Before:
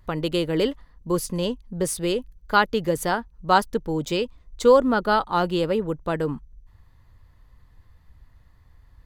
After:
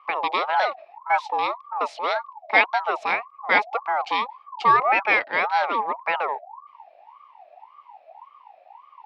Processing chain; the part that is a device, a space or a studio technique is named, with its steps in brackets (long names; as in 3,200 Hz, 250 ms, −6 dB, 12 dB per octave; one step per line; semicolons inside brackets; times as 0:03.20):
voice changer toy (ring modulator whose carrier an LFO sweeps 900 Hz, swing 30%, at 1.8 Hz; loudspeaker in its box 590–4,000 Hz, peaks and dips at 840 Hz +7 dB, 1,500 Hz −8 dB, 2,300 Hz +7 dB)
level +4 dB